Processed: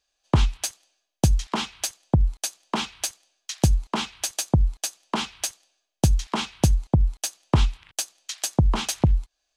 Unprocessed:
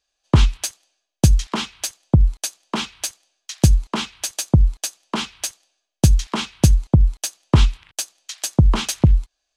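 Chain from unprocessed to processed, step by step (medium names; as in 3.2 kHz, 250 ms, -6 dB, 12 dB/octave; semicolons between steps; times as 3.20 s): dynamic bell 780 Hz, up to +5 dB, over -42 dBFS, Q 2.1; in parallel at +3 dB: compression, threshold -24 dBFS, peak gain reduction 15.5 dB; on the sum: trim -8 dB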